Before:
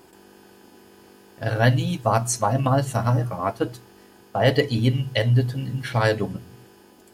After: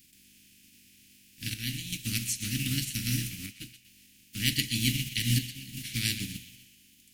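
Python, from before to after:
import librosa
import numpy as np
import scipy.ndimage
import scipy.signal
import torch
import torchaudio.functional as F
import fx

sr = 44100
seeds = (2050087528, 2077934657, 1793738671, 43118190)

y = fx.spec_flatten(x, sr, power=0.46)
y = fx.chopper(y, sr, hz=0.52, depth_pct=60, duty_pct=80)
y = scipy.signal.sosfilt(scipy.signal.ellip(3, 1.0, 80, [260.0, 2300.0], 'bandstop', fs=sr, output='sos'), y)
y = fx.echo_banded(y, sr, ms=124, feedback_pct=47, hz=2900.0, wet_db=-11.0)
y = y * 10.0 ** (-6.0 / 20.0)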